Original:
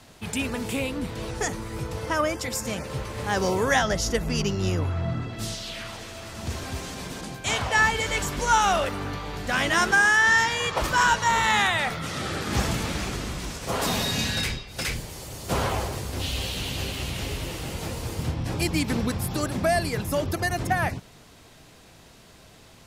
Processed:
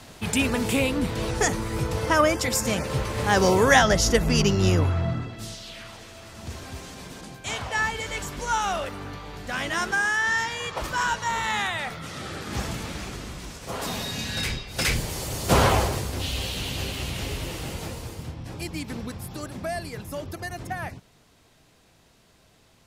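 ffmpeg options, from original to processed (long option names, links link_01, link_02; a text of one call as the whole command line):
ffmpeg -i in.wav -af "volume=17dB,afade=type=out:start_time=4.78:duration=0.63:silence=0.316228,afade=type=in:start_time=14.26:duration=0.83:silence=0.251189,afade=type=out:start_time=15.68:duration=0.51:silence=0.446684,afade=type=out:start_time=17.67:duration=0.59:silence=0.398107" out.wav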